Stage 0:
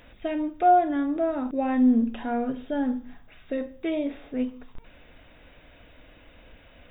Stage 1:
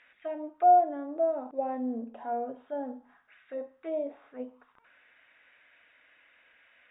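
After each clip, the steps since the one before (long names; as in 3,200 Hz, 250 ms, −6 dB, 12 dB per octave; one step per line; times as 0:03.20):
envelope filter 630–2,000 Hz, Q 2.4, down, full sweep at −24 dBFS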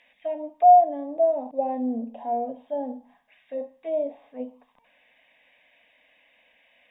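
phaser with its sweep stopped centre 370 Hz, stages 6
level +6.5 dB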